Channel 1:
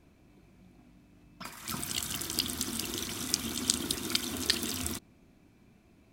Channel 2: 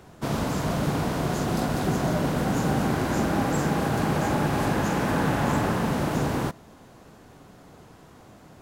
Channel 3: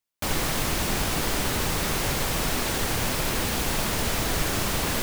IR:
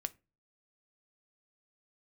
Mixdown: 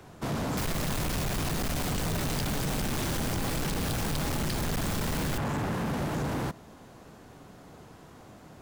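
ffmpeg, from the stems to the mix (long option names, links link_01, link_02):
-filter_complex "[0:a]volume=2.5dB[link_01];[1:a]volume=-0.5dB[link_02];[2:a]adelay=350,volume=1.5dB[link_03];[link_01][link_02][link_03]amix=inputs=3:normalize=0,acrossover=split=180[link_04][link_05];[link_05]acompressor=threshold=-27dB:ratio=6[link_06];[link_04][link_06]amix=inputs=2:normalize=0,asoftclip=type=hard:threshold=-27.5dB"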